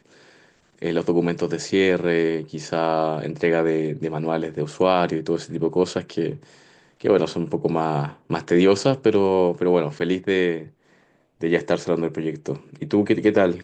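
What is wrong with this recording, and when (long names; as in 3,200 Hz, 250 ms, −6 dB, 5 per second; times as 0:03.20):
0:09.99–0:10.00: drop-out 7.9 ms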